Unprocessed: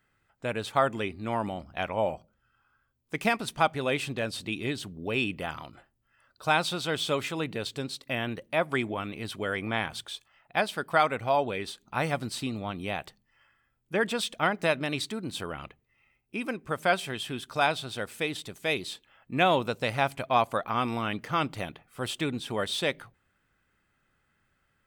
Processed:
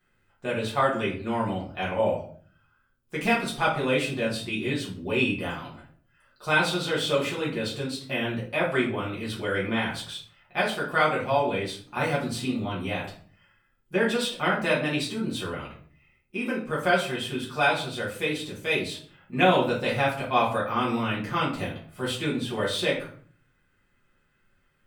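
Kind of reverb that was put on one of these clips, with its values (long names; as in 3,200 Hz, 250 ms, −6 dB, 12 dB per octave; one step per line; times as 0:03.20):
rectangular room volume 45 cubic metres, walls mixed, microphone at 1.3 metres
level −5 dB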